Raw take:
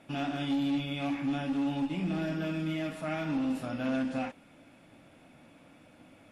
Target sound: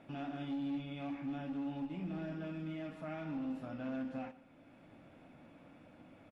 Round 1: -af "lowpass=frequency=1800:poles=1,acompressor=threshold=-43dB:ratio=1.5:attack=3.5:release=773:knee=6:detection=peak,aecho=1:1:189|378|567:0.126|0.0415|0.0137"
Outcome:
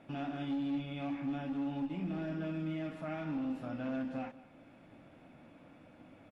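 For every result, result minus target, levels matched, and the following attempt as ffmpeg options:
echo 71 ms late; downward compressor: peak gain reduction −3.5 dB
-af "lowpass=frequency=1800:poles=1,acompressor=threshold=-43dB:ratio=1.5:attack=3.5:release=773:knee=6:detection=peak,aecho=1:1:118|236|354:0.126|0.0415|0.0137"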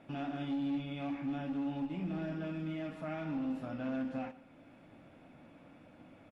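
downward compressor: peak gain reduction −3.5 dB
-af "lowpass=frequency=1800:poles=1,acompressor=threshold=-53dB:ratio=1.5:attack=3.5:release=773:knee=6:detection=peak,aecho=1:1:118|236|354:0.126|0.0415|0.0137"

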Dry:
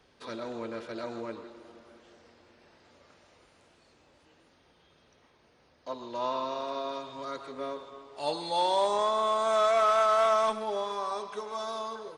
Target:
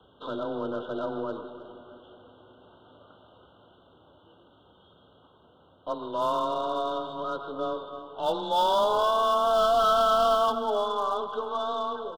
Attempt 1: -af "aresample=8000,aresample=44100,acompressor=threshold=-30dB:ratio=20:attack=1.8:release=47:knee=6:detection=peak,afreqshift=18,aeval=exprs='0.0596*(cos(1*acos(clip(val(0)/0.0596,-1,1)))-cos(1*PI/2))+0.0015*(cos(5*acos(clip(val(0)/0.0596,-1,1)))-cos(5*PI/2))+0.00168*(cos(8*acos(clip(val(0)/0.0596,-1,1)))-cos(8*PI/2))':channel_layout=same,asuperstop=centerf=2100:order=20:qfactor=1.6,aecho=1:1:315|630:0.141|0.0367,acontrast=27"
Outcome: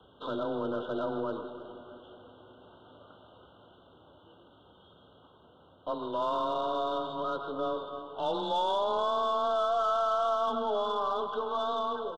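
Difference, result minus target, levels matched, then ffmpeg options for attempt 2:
downward compressor: peak gain reduction +10.5 dB
-af "aresample=8000,aresample=44100,afreqshift=18,aeval=exprs='0.0596*(cos(1*acos(clip(val(0)/0.0596,-1,1)))-cos(1*PI/2))+0.0015*(cos(5*acos(clip(val(0)/0.0596,-1,1)))-cos(5*PI/2))+0.00168*(cos(8*acos(clip(val(0)/0.0596,-1,1)))-cos(8*PI/2))':channel_layout=same,asuperstop=centerf=2100:order=20:qfactor=1.6,aecho=1:1:315|630:0.141|0.0367,acontrast=27"

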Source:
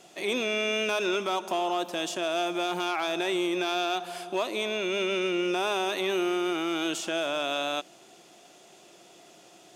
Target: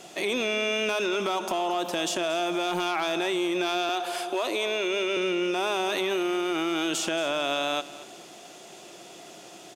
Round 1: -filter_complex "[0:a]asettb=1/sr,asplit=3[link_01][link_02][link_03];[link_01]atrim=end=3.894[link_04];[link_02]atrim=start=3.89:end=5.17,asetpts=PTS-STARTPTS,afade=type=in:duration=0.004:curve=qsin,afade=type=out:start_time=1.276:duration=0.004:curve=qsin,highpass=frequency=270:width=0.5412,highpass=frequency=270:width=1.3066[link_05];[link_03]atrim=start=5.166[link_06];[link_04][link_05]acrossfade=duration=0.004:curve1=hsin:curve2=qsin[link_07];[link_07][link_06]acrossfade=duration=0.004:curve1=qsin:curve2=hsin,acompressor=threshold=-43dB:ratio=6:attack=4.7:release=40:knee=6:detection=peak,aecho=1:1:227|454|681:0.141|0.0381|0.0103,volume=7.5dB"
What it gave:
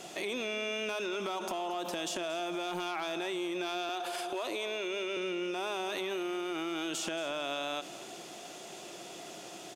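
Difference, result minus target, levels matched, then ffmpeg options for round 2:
downward compressor: peak gain reduction +8.5 dB
-filter_complex "[0:a]asettb=1/sr,asplit=3[link_01][link_02][link_03];[link_01]atrim=end=3.894[link_04];[link_02]atrim=start=3.89:end=5.17,asetpts=PTS-STARTPTS,afade=type=in:duration=0.004:curve=qsin,afade=type=out:start_time=1.276:duration=0.004:curve=qsin,highpass=frequency=270:width=0.5412,highpass=frequency=270:width=1.3066[link_05];[link_03]atrim=start=5.166[link_06];[link_04][link_05]acrossfade=duration=0.004:curve1=hsin:curve2=qsin[link_07];[link_07][link_06]acrossfade=duration=0.004:curve1=qsin:curve2=hsin,acompressor=threshold=-33dB:ratio=6:attack=4.7:release=40:knee=6:detection=peak,aecho=1:1:227|454|681:0.141|0.0381|0.0103,volume=7.5dB"

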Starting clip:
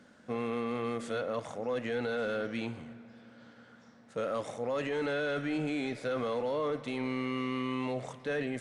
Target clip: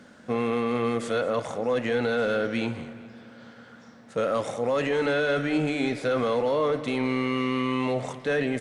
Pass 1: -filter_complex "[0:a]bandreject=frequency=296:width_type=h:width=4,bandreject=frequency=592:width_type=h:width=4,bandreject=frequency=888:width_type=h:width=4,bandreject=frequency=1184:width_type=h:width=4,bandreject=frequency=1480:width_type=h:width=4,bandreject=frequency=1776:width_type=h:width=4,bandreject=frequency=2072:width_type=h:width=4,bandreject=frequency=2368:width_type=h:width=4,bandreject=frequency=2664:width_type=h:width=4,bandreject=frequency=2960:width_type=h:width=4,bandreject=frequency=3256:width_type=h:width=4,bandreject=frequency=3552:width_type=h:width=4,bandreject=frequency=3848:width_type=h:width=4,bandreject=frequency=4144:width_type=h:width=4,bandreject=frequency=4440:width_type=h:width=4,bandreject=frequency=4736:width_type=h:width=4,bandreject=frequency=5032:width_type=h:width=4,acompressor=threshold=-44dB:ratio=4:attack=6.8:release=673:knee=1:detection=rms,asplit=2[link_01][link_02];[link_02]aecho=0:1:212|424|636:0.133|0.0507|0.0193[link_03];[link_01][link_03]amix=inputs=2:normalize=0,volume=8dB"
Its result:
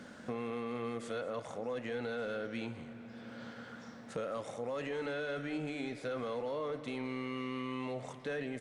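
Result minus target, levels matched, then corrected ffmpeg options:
downward compressor: peak gain reduction +14 dB
-filter_complex "[0:a]bandreject=frequency=296:width_type=h:width=4,bandreject=frequency=592:width_type=h:width=4,bandreject=frequency=888:width_type=h:width=4,bandreject=frequency=1184:width_type=h:width=4,bandreject=frequency=1480:width_type=h:width=4,bandreject=frequency=1776:width_type=h:width=4,bandreject=frequency=2072:width_type=h:width=4,bandreject=frequency=2368:width_type=h:width=4,bandreject=frequency=2664:width_type=h:width=4,bandreject=frequency=2960:width_type=h:width=4,bandreject=frequency=3256:width_type=h:width=4,bandreject=frequency=3552:width_type=h:width=4,bandreject=frequency=3848:width_type=h:width=4,bandreject=frequency=4144:width_type=h:width=4,bandreject=frequency=4440:width_type=h:width=4,bandreject=frequency=4736:width_type=h:width=4,bandreject=frequency=5032:width_type=h:width=4,asplit=2[link_01][link_02];[link_02]aecho=0:1:212|424|636:0.133|0.0507|0.0193[link_03];[link_01][link_03]amix=inputs=2:normalize=0,volume=8dB"

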